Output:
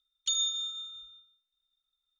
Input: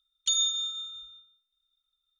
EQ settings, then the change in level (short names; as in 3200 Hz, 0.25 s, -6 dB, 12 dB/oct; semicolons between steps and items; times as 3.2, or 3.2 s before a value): air absorption 84 m; high shelf 6400 Hz +11 dB; -3.5 dB